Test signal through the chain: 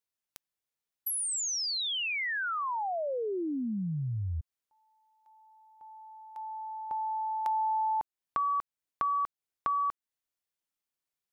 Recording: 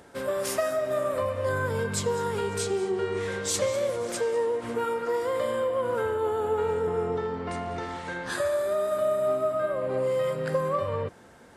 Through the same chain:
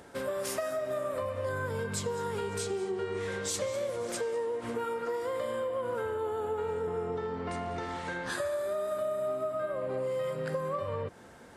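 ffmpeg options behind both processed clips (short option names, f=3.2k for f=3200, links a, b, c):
-af "acompressor=threshold=-33dB:ratio=2.5"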